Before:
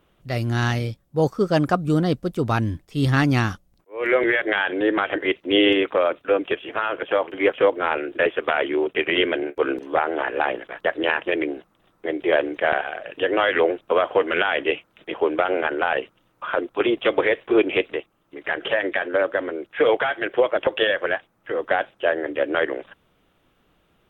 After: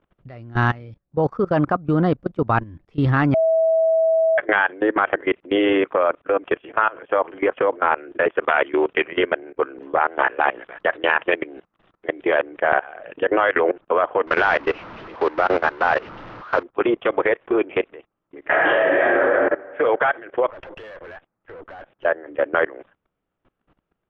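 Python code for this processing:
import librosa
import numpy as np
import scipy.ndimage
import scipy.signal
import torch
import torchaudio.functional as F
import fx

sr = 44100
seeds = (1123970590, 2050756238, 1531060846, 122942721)

y = fx.high_shelf(x, sr, hz=2400.0, db=11.5, at=(8.48, 9.04))
y = fx.high_shelf(y, sr, hz=2400.0, db=11.0, at=(10.0, 12.42))
y = fx.delta_mod(y, sr, bps=32000, step_db=-20.5, at=(14.27, 16.63))
y = fx.reverb_throw(y, sr, start_s=18.4, length_s=0.77, rt60_s=1.8, drr_db=-10.0)
y = fx.tube_stage(y, sr, drive_db=28.0, bias=0.5, at=(20.48, 22.04), fade=0.02)
y = fx.edit(y, sr, fx.bleep(start_s=3.34, length_s=1.04, hz=649.0, db=-17.0), tone=tone)
y = scipy.signal.sosfilt(scipy.signal.butter(2, 2000.0, 'lowpass', fs=sr, output='sos'), y)
y = fx.dynamic_eq(y, sr, hz=1100.0, q=1.1, threshold_db=-34.0, ratio=4.0, max_db=6)
y = fx.level_steps(y, sr, step_db=21)
y = y * librosa.db_to_amplitude(4.0)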